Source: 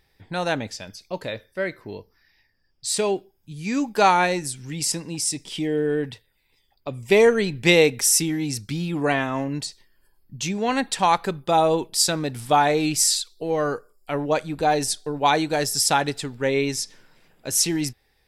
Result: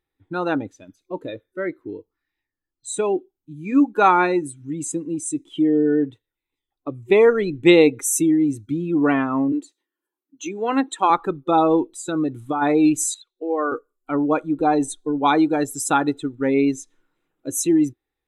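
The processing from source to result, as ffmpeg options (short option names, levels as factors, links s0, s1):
-filter_complex "[0:a]asettb=1/sr,asplit=3[s0][s1][s2];[s0]atrim=end=9.524[s3];[s1]atrim=start=9.52:end=11.1,asetpts=PTS-STARTPTS,afade=t=in:d=0.004:c=qsin,afade=t=out:st=1.576:d=0.004:c=qsin,highpass=f=240:w=0.5412,highpass=f=240:w=1.3066[s4];[s2]atrim=start=11.096[s5];[s3][s4]acrossfade=d=0.004:c1=hsin:c2=qsin[s6];[s6][s5]acrossfade=d=0.004:c1=qsin:c2=hsin,asplit=3[s7][s8][s9];[s7]afade=t=out:st=11.81:d=0.02[s10];[s8]acompressor=threshold=0.0794:ratio=4:attack=3.2:release=140:knee=1:detection=peak,afade=t=in:st=11.81:d=0.02,afade=t=out:st=12.61:d=0.02[s11];[s9]afade=t=in:st=12.61:d=0.02[s12];[s10][s11][s12]amix=inputs=3:normalize=0,asettb=1/sr,asplit=3[s13][s14][s15];[s13]atrim=end=13.144[s16];[s14]atrim=start=13.14:end=13.72,asetpts=PTS-STARTPTS,afade=t=in:d=0.004:c=qsin,afade=t=out:st=0.576:d=0.004:c=qsin,acrossover=split=330 3300:gain=0.0708 1 0.158[s17][s18][s19];[s17][s18][s19]amix=inputs=3:normalize=0[s20];[s15]atrim=start=13.716[s21];[s16][s20]acrossfade=d=0.004:c1=hsin:c2=qsin[s22];[s22][s21]acrossfade=d=0.004:c1=qsin:c2=hsin,superequalizer=6b=3.55:7b=1.58:9b=1.41:10b=2.24:14b=0.282,afftdn=nr=17:nf=-27,volume=0.794"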